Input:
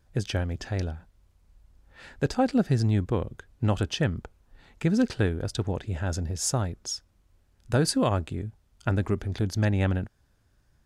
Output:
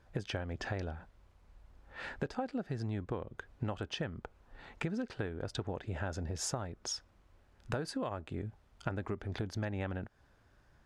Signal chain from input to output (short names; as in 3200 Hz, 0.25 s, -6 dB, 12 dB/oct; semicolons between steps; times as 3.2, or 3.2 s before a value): LPF 1300 Hz 6 dB/oct; low shelf 390 Hz -12 dB; compressor 10:1, threshold -44 dBFS, peak gain reduction 19.5 dB; gain +10 dB